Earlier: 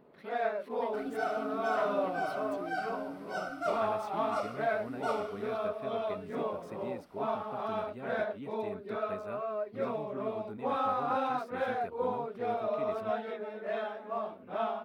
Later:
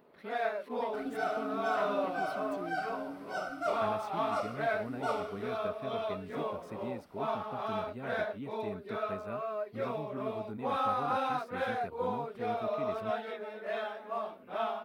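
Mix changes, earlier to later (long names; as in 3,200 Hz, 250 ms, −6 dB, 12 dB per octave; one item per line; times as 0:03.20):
speech: add bass and treble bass +4 dB, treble 0 dB
first sound: add spectral tilt +2 dB per octave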